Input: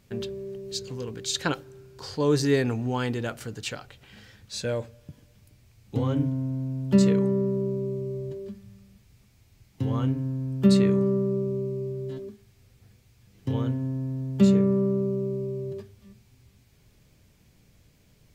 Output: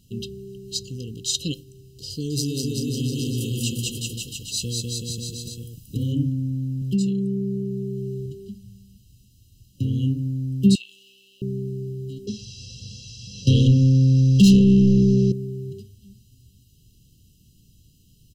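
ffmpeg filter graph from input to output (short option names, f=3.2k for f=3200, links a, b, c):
-filter_complex "[0:a]asettb=1/sr,asplit=3[a][b][c];[a]atrim=end=2.104[d];[b]atrim=start=2.1:end=6.12,asetpts=PTS-STARTPTS,afade=t=in:d=0.004:c=qsin,afade=t=out:st=4.016:d=0.004:c=qsin,aecho=1:1:200|380|542|687.8|819|937.1:0.794|0.631|0.501|0.398|0.316|0.251,atrim=end_sample=177282,acompressor=threshold=-22dB:ratio=10:attack=3.2:release=140:knee=1:detection=peak,highshelf=f=8.1k:g=9.5[e];[c]atrim=start=6.116[f];[d][e]acrossfade=d=0.004:c1=hsin:c2=qsin[g];[g][f]acrossfade=d=0.004:c1=qsin:c2=hsin,asettb=1/sr,asplit=3[h][i][j];[h]atrim=end=6.814[k];[i]atrim=start=6.81:end=8.26,asetpts=PTS-STARTPTS,afade=t=in:d=0.004:c=qsin,afade=t=out:st=1.446:d=0.004:c=qsin,aecho=1:1:5.4:0.65,atrim=end_sample=63945,acompressor=threshold=-25dB:ratio=2.5:attack=3.2:release=140:knee=1:detection=peak[l];[j]atrim=start=8.256[m];[k][l]acrossfade=d=0.004:c1=hsin:c2=qsin[n];[n][m]acrossfade=d=0.004:c1=qsin:c2=hsin,asettb=1/sr,asplit=3[o][p][q];[o]atrim=end=10.754[r];[p]atrim=start=10.75:end=11.42,asetpts=PTS-STARTPTS,afade=t=in:d=0.004:c=qsin,afade=t=out:st=0.666:d=0.004:c=qsin,aeval=exprs='if(lt(val(0),0),0.447*val(0),val(0))':c=same,highpass=f=2.5k:t=q:w=4.8,acompressor=threshold=-37dB:ratio=2.5:attack=3.2:release=140:knee=1:detection=peak[s];[q]atrim=start=11.416[t];[r][s]acrossfade=d=0.004:c1=hsin:c2=qsin[u];[u][t]acrossfade=d=0.004:c1=qsin:c2=hsin,asettb=1/sr,asplit=3[v][w][x];[v]atrim=end=12.274[y];[w]atrim=start=12.27:end=15.32,asetpts=PTS-STARTPTS,afade=t=in:d=0.004:c=qsin,afade=t=out:st=3.046:d=0.004:c=qsin,lowpass=f=5.5k:t=q:w=4.5,aecho=1:1:1.5:0.89,atrim=end_sample=134505,asplit=2[z][aa];[aa]highpass=f=720:p=1,volume=30dB,asoftclip=type=tanh:threshold=-7dB[ab];[z][ab]amix=inputs=2:normalize=0,lowpass=f=1.5k:p=1,volume=-6dB[ac];[x]atrim=start=15.316[ad];[y][ac]acrossfade=d=0.004:c1=hsin:c2=qsin[ae];[ae][ad]acrossfade=d=0.004:c1=qsin:c2=hsin,afftfilt=real='re*(1-between(b*sr/4096,540,2600))':imag='im*(1-between(b*sr/4096,540,2600))':win_size=4096:overlap=0.75,highshelf=f=4.7k:g=5,aecho=1:1:1:0.72"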